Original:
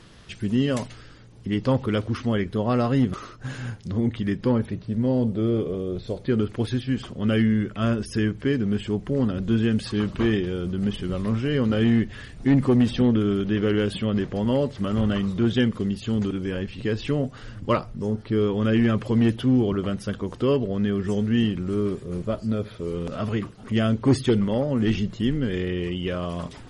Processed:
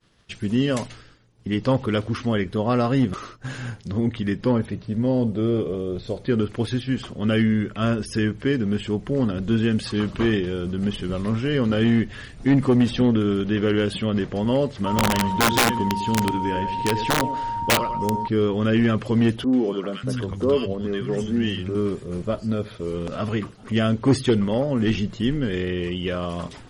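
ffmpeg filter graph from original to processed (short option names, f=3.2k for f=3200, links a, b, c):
-filter_complex "[0:a]asettb=1/sr,asplit=3[a][b][c];[a]atrim=end=14.864[d];[b]atrim=start=14.86:end=18.28,asetpts=PTS-STARTPTS,afade=t=in:d=0.004:c=qsin,afade=t=out:st=3.416:d=0.004:c=qsin,aecho=1:1:99|198|297|396:0.316|0.108|0.0366|0.0124,atrim=end_sample=150822,aeval=exprs='val(0)+0.0447*sin(2*PI*930*n/s)':c=same,aeval=exprs='(mod(5.01*val(0)+1,2)-1)/5.01':c=same[e];[c]atrim=start=18.276[f];[d][e]acrossfade=d=0.004:c1=hsin:c2=qsin[g];[g][f]acrossfade=d=0.004:c1=qsin:c2=hsin,asettb=1/sr,asplit=3[h][i][j];[h]atrim=end=19.444[k];[i]atrim=start=19.44:end=21.75,asetpts=PTS-STARTPTS,afade=t=in:d=0.004:c=qsin,afade=t=out:st=2.306:d=0.004:c=qsin,asplit=2[l][m];[m]adelay=12,volume=-13dB[n];[l][n]amix=inputs=2:normalize=0,atrim=end_sample=101871,acrossover=split=180|1200[o][p][q];[q]adelay=90[r];[o]adelay=590[s];[s][p][r]amix=inputs=3:normalize=0,atrim=end_sample=101871[t];[j]atrim=start=21.746[u];[k][t]acrossfade=d=0.004:c1=hsin:c2=qsin[v];[v][u]acrossfade=d=0.004:c1=qsin:c2=hsin,agate=range=-33dB:threshold=-39dB:ratio=3:detection=peak,lowshelf=f=380:g=-3,volume=3dB"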